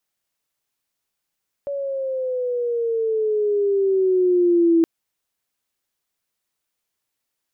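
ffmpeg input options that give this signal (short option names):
-f lavfi -i "aevalsrc='pow(10,(-12+11.5*(t/3.17-1))/20)*sin(2*PI*568*3.17/(-9.5*log(2)/12)*(exp(-9.5*log(2)/12*t/3.17)-1))':d=3.17:s=44100"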